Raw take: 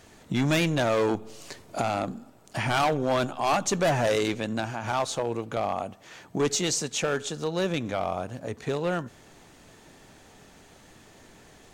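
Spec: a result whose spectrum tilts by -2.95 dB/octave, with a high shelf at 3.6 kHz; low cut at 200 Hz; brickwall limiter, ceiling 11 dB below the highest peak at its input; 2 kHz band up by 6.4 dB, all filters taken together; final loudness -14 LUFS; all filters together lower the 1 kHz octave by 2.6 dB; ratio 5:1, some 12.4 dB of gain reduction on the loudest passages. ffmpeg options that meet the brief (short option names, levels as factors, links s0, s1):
-af "highpass=200,equalizer=f=1000:t=o:g=-6.5,equalizer=f=2000:t=o:g=8.5,highshelf=f=3600:g=6,acompressor=threshold=0.0251:ratio=5,volume=22.4,alimiter=limit=0.75:level=0:latency=1"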